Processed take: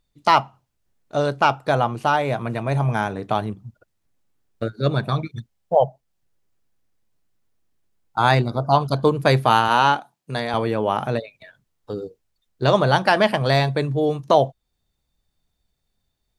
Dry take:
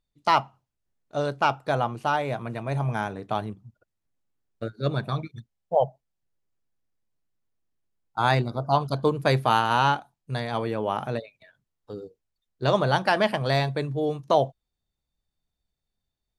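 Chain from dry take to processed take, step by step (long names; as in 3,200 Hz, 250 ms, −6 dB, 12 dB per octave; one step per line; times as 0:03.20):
in parallel at −2 dB: downward compressor, threshold −35 dBFS, peak gain reduction 18.5 dB
0:09.68–0:10.54: on the sum: high-pass filter 180 Hz 12 dB per octave
level +4 dB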